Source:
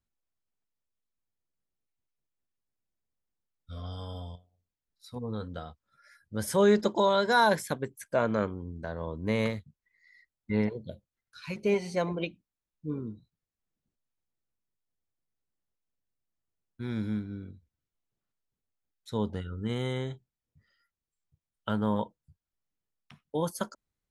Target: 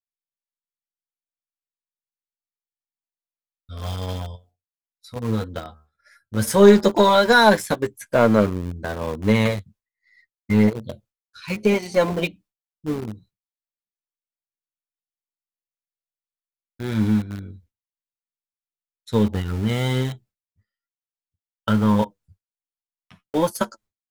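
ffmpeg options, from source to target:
-filter_complex "[0:a]asettb=1/sr,asplit=3[s0][s1][s2];[s0]atrim=end=5.634[s3];[s1]atrim=start=5.63:end=6.91,asetpts=PTS-STARTPTS,afade=t=in:d=0.004:c=qsin,afade=t=out:st=1.276:d=0.004:c=qsin,bandreject=f=75.45:t=h:w=4,bandreject=f=150.9:t=h:w=4,bandreject=f=226.35:t=h:w=4,bandreject=f=301.8:t=h:w=4,bandreject=f=377.25:t=h:w=4,bandreject=f=452.7:t=h:w=4,bandreject=f=528.15:t=h:w=4,bandreject=f=603.6:t=h:w=4,bandreject=f=679.05:t=h:w=4,bandreject=f=754.5:t=h:w=4,bandreject=f=829.95:t=h:w=4,bandreject=f=905.4:t=h:w=4,bandreject=f=980.85:t=h:w=4,bandreject=f=1056.3:t=h:w=4,bandreject=f=1131.75:t=h:w=4,bandreject=f=1207.2:t=h:w=4,bandreject=f=1282.65:t=h:w=4,bandreject=f=1358.1:t=h:w=4,bandreject=f=1433.55:t=h:w=4,bandreject=f=1509:t=h:w=4,bandreject=f=1584.45:t=h:w=4[s4];[s2]atrim=start=6.906[s5];[s3][s4]acrossfade=d=0.004:c1=hsin:c2=qsin[s6];[s6][s5]acrossfade=d=0.004:c1=qsin:c2=hsin,flanger=delay=8.3:depth=2.5:regen=22:speed=1.1:shape=triangular,aeval=exprs='0.2*(cos(1*acos(clip(val(0)/0.2,-1,1)))-cos(1*PI/2))+0.00891*(cos(4*acos(clip(val(0)/0.2,-1,1)))-cos(4*PI/2))+0.01*(cos(5*acos(clip(val(0)/0.2,-1,1)))-cos(5*PI/2))':c=same,agate=range=0.0224:threshold=0.00141:ratio=3:detection=peak,asplit=2[s7][s8];[s8]aeval=exprs='val(0)*gte(abs(val(0)),0.0178)':c=same,volume=0.631[s9];[s7][s9]amix=inputs=2:normalize=0,volume=2.51"

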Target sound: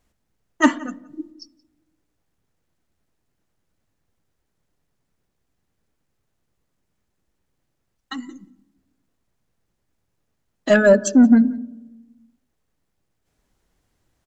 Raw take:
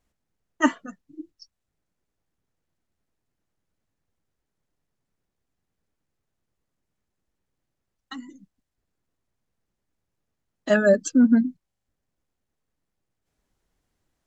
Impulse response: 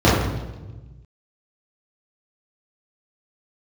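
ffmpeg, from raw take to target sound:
-filter_complex "[0:a]asplit=2[s0][s1];[s1]adelay=174.9,volume=0.0708,highshelf=f=4000:g=-3.94[s2];[s0][s2]amix=inputs=2:normalize=0,acontrast=86,asplit=2[s3][s4];[1:a]atrim=start_sample=2205,adelay=32[s5];[s4][s5]afir=irnorm=-1:irlink=0,volume=0.00447[s6];[s3][s6]amix=inputs=2:normalize=0,volume=0.891"

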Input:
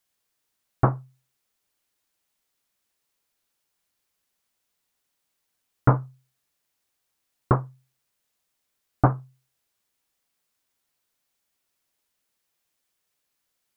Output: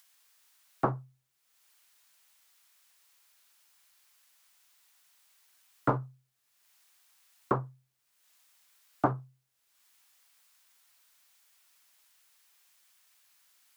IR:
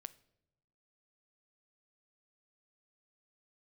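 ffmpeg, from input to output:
-filter_complex "[0:a]acrossover=split=160|290|800[s0][s1][s2][s3];[s0]aeval=exprs='0.0376*(abs(mod(val(0)/0.0376+3,4)-2)-1)':c=same[s4];[s3]acompressor=mode=upward:threshold=0.00501:ratio=2.5[s5];[s4][s1][s2][s5]amix=inputs=4:normalize=0,volume=0.562"

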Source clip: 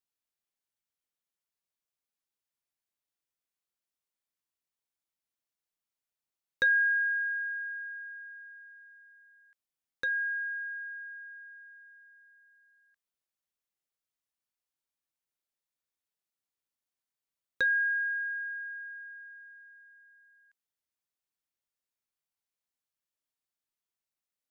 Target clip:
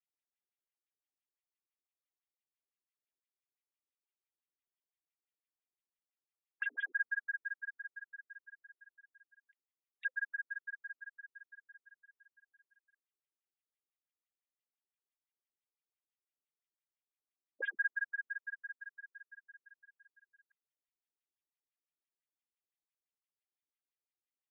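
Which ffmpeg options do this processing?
-filter_complex "[0:a]acrossover=split=1700[s0][s1];[s1]aeval=exprs='(mod(33.5*val(0)+1,2)-1)/33.5':c=same[s2];[s0][s2]amix=inputs=2:normalize=0,bandreject=f=1500:w=8.7,aecho=1:1:2.5:0.33,afftfilt=real='re*between(b*sr/1024,280*pow(2700/280,0.5+0.5*sin(2*PI*5.9*pts/sr))/1.41,280*pow(2700/280,0.5+0.5*sin(2*PI*5.9*pts/sr))*1.41)':imag='im*between(b*sr/1024,280*pow(2700/280,0.5+0.5*sin(2*PI*5.9*pts/sr))/1.41,280*pow(2700/280,0.5+0.5*sin(2*PI*5.9*pts/sr))*1.41)':win_size=1024:overlap=0.75,volume=0.841"

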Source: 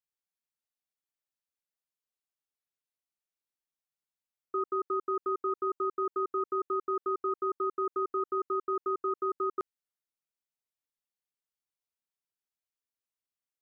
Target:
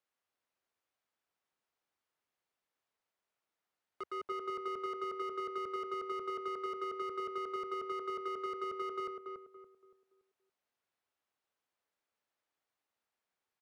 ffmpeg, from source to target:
-filter_complex "[0:a]areverse,equalizer=f=82:w=1.5:g=5.5,acrossover=split=270[s0][s1];[s0]alimiter=level_in=21.1:limit=0.0631:level=0:latency=1:release=221,volume=0.0473[s2];[s2][s1]amix=inputs=2:normalize=0,asoftclip=type=tanh:threshold=0.02,asplit=2[s3][s4];[s4]highpass=f=720:p=1,volume=10,asoftclip=type=tanh:threshold=0.02[s5];[s3][s5]amix=inputs=2:normalize=0,lowpass=f=1100:p=1,volume=0.501,asplit=2[s6][s7];[s7]adelay=284,lowpass=f=1100:p=1,volume=0.708,asplit=2[s8][s9];[s9]adelay=284,lowpass=f=1100:p=1,volume=0.38,asplit=2[s10][s11];[s11]adelay=284,lowpass=f=1100:p=1,volume=0.38,asplit=2[s12][s13];[s13]adelay=284,lowpass=f=1100:p=1,volume=0.38,asplit=2[s14][s15];[s15]adelay=284,lowpass=f=1100:p=1,volume=0.38[s16];[s6][s8][s10][s12][s14][s16]amix=inputs=6:normalize=0"

